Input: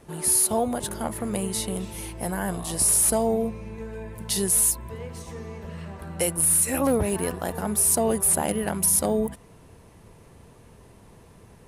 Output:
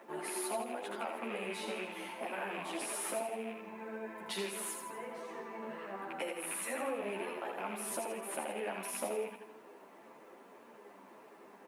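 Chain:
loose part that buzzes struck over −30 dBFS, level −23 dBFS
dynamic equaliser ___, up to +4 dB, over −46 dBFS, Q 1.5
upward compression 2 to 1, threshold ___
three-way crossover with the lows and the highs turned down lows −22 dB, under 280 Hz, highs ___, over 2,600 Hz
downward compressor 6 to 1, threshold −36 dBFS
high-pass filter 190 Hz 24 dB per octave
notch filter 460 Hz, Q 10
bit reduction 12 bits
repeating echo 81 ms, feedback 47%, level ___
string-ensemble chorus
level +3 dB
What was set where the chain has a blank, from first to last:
3,200 Hz, −47 dBFS, −20 dB, −5 dB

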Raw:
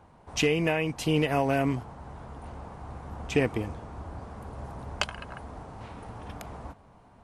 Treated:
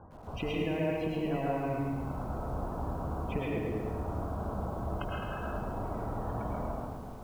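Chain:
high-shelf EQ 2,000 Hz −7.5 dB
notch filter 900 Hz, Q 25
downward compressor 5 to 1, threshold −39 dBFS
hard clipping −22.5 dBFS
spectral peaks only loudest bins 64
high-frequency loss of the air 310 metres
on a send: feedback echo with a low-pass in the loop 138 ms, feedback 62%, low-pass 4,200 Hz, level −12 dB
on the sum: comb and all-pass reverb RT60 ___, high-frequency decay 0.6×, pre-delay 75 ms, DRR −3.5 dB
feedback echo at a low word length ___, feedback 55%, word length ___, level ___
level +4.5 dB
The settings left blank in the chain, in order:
0.84 s, 108 ms, 10 bits, −7 dB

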